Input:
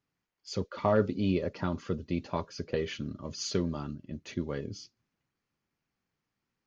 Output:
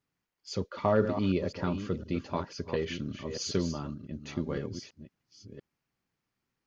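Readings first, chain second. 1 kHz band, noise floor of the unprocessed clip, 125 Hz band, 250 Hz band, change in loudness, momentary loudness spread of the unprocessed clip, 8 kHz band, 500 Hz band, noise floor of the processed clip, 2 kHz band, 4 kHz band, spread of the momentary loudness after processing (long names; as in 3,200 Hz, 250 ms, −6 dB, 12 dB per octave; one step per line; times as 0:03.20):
+0.5 dB, below −85 dBFS, +0.5 dB, +0.5 dB, +0.5 dB, 14 LU, can't be measured, +0.5 dB, −85 dBFS, +0.5 dB, +0.5 dB, 16 LU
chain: delay that plays each chunk backwards 509 ms, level −9 dB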